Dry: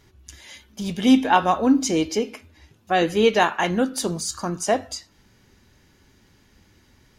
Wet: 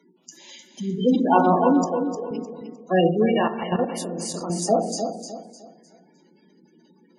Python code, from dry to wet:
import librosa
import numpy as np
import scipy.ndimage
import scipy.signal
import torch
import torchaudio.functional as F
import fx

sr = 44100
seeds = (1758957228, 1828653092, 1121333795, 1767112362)

y = fx.spec_quant(x, sr, step_db=30)
y = scipy.signal.sosfilt(scipy.signal.butter(16, 160.0, 'highpass', fs=sr, output='sos'), y)
y = fx.peak_eq(y, sr, hz=1700.0, db=-9.0, octaves=0.75)
y = fx.room_shoebox(y, sr, seeds[0], volume_m3=180.0, walls='mixed', distance_m=0.76)
y = fx.spec_gate(y, sr, threshold_db=-20, keep='strong')
y = fx.vowel_filter(y, sr, vowel='e', at=(1.84, 2.31))
y = fx.echo_feedback(y, sr, ms=305, feedback_pct=33, wet_db=-8)
y = fx.level_steps(y, sr, step_db=10, at=(3.26, 4.5))